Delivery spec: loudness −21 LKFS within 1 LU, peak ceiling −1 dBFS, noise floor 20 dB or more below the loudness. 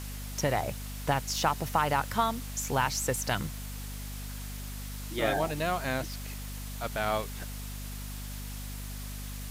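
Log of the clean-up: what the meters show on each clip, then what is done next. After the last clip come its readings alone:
mains hum 50 Hz; hum harmonics up to 250 Hz; level of the hum −37 dBFS; background noise floor −39 dBFS; target noise floor −53 dBFS; integrated loudness −32.5 LKFS; sample peak −12.5 dBFS; target loudness −21.0 LKFS
→ hum removal 50 Hz, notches 5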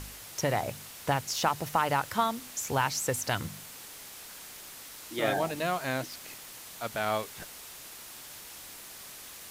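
mains hum none found; background noise floor −47 dBFS; target noise floor −52 dBFS
→ broadband denoise 6 dB, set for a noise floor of −47 dBFS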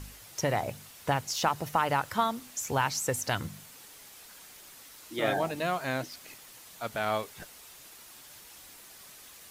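background noise floor −51 dBFS; integrated loudness −31.0 LKFS; sample peak −13.0 dBFS; target loudness −21.0 LKFS
→ level +10 dB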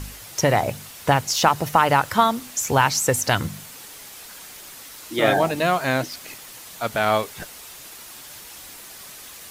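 integrated loudness −21.0 LKFS; sample peak −3.0 dBFS; background noise floor −41 dBFS

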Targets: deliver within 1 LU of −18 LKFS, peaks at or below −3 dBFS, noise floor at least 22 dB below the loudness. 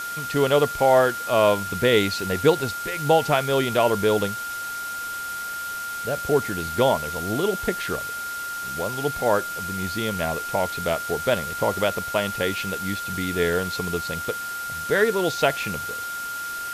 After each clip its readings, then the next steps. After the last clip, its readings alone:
interfering tone 1,400 Hz; level of the tone −29 dBFS; background noise floor −31 dBFS; target noise floor −46 dBFS; integrated loudness −23.5 LKFS; sample peak −5.5 dBFS; target loudness −18.0 LKFS
→ notch filter 1,400 Hz, Q 30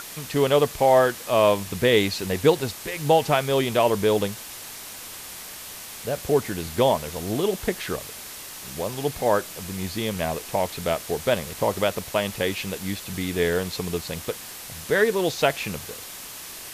interfering tone none found; background noise floor −39 dBFS; target noise floor −46 dBFS
→ broadband denoise 7 dB, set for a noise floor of −39 dBFS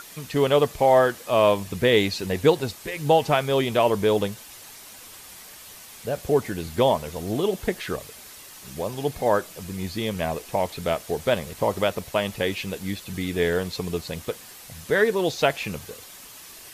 background noise floor −44 dBFS; target noise floor −46 dBFS
→ broadband denoise 6 dB, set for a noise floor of −44 dBFS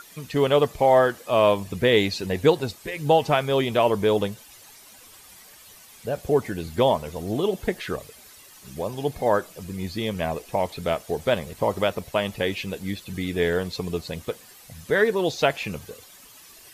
background noise floor −49 dBFS; integrated loudness −24.0 LKFS; sample peak −5.5 dBFS; target loudness −18.0 LKFS
→ level +6 dB
brickwall limiter −3 dBFS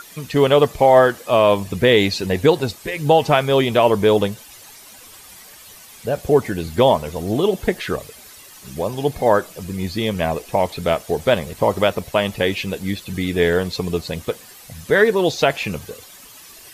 integrated loudness −18.5 LKFS; sample peak −3.0 dBFS; background noise floor −43 dBFS

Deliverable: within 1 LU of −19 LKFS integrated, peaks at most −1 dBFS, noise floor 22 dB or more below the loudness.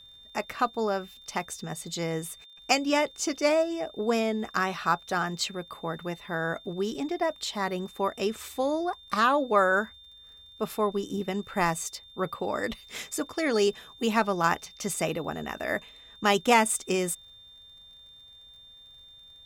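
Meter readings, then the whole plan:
crackle rate 37 per second; interfering tone 3,600 Hz; level of the tone −49 dBFS; integrated loudness −28.5 LKFS; sample peak −8.0 dBFS; target loudness −19.0 LKFS
→ click removal
notch filter 3,600 Hz, Q 30
level +9.5 dB
brickwall limiter −1 dBFS

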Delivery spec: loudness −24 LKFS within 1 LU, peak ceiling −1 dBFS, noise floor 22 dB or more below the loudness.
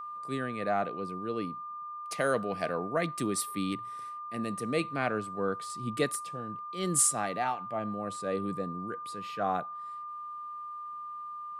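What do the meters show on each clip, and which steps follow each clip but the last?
interfering tone 1,200 Hz; level of the tone −38 dBFS; integrated loudness −33.0 LKFS; sample peak −12.5 dBFS; target loudness −24.0 LKFS
→ notch filter 1,200 Hz, Q 30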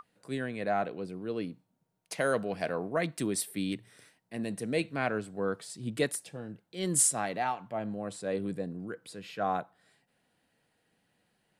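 interfering tone none found; integrated loudness −33.0 LKFS; sample peak −13.0 dBFS; target loudness −24.0 LKFS
→ level +9 dB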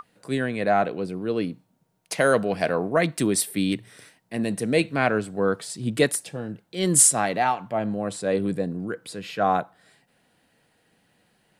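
integrated loudness −24.0 LKFS; sample peak −4.0 dBFS; background noise floor −67 dBFS

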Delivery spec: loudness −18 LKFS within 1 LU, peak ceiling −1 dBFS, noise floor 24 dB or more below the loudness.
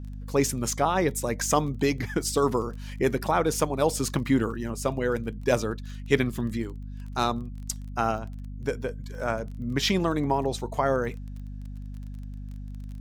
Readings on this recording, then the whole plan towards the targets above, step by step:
crackle rate 22 per second; mains hum 50 Hz; hum harmonics up to 250 Hz; level of the hum −34 dBFS; integrated loudness −27.5 LKFS; sample peak −7.0 dBFS; target loudness −18.0 LKFS
→ click removal
hum removal 50 Hz, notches 5
level +9.5 dB
brickwall limiter −1 dBFS

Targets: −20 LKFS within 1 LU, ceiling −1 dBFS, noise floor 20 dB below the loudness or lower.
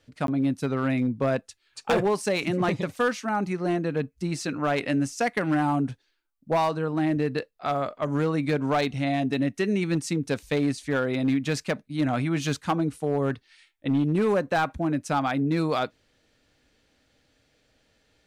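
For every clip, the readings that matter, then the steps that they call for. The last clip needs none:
share of clipped samples 1.1%; peaks flattened at −17.5 dBFS; number of dropouts 1; longest dropout 12 ms; integrated loudness −26.5 LKFS; sample peak −17.5 dBFS; target loudness −20.0 LKFS
→ clipped peaks rebuilt −17.5 dBFS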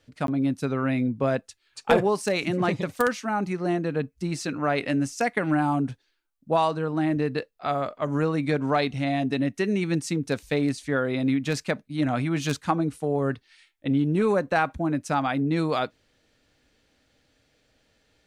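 share of clipped samples 0.0%; number of dropouts 1; longest dropout 12 ms
→ repair the gap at 0:00.27, 12 ms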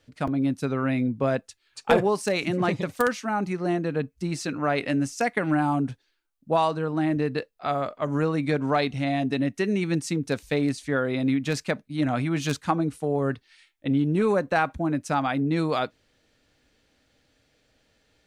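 number of dropouts 0; integrated loudness −26.0 LKFS; sample peak −8.5 dBFS; target loudness −20.0 LKFS
→ level +6 dB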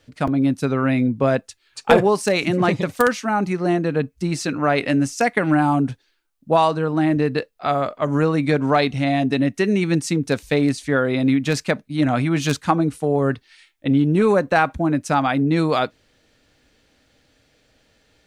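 integrated loudness −20.0 LKFS; sample peak −2.5 dBFS; background noise floor −64 dBFS

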